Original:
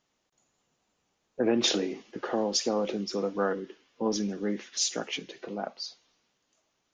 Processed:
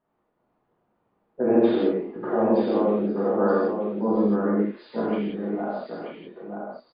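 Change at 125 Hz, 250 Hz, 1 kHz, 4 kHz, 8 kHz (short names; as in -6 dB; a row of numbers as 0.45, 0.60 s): +8.5 dB, +9.0 dB, +7.0 dB, under -10 dB, under -40 dB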